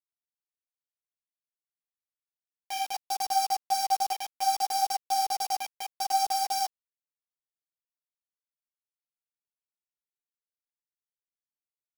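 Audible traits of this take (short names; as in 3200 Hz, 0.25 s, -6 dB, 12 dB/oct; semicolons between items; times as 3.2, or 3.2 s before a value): a buzz of ramps at a fixed pitch in blocks of 8 samples; chopped level 0.68 Hz, depth 60%, duty 80%; a quantiser's noise floor 6-bit, dither none; a shimmering, thickened sound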